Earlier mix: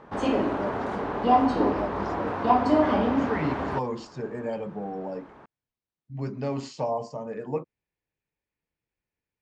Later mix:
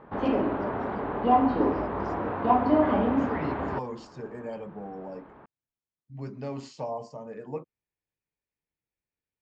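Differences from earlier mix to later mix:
speech -5.5 dB; background: add air absorption 340 m

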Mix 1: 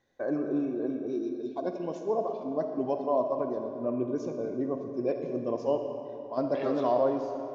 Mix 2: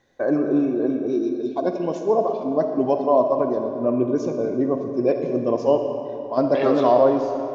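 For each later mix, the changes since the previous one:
first voice +9.5 dB; second voice +12.0 dB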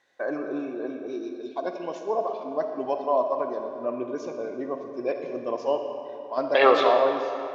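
second voice +11.5 dB; master: add band-pass 2100 Hz, Q 0.55

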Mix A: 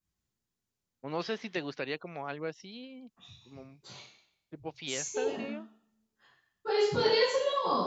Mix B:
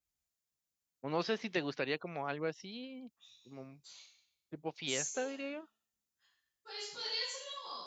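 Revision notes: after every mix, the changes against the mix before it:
second voice: add differentiator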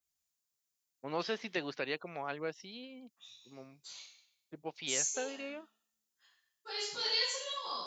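first voice: add low shelf 250 Hz -7 dB; second voice +5.5 dB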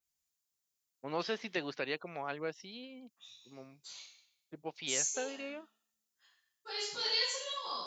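none

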